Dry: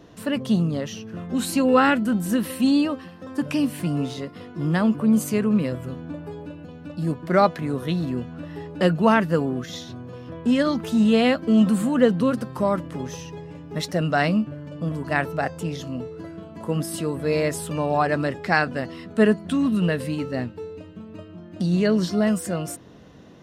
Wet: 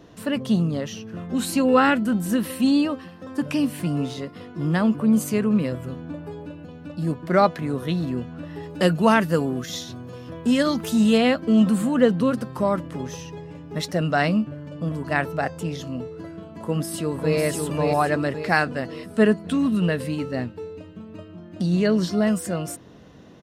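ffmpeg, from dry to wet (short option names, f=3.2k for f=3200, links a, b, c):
-filter_complex "[0:a]asettb=1/sr,asplit=3[a][b][c];[a]atrim=end=8.634[d];[b]atrim=start=8.63:end=11.18,asetpts=PTS-STARTPTS,afade=t=in:d=0.004:c=qsin,afade=t=out:st=2.546:d=0.004:c=qsin,highshelf=f=5.2k:g=11[e];[c]atrim=start=11.176[f];[d][e]acrossfade=d=0.004:c1=hsin:c2=qsin[g];[g][f]acrossfade=d=0.004:c1=qsin:c2=hsin,asplit=2[h][i];[i]afade=t=in:st=16.5:d=0.01,afade=t=out:st=17.38:d=0.01,aecho=0:1:550|1100|1650|2200|2750|3300:0.707946|0.318576|0.143359|0.0645116|0.0290302|0.0130636[j];[h][j]amix=inputs=2:normalize=0"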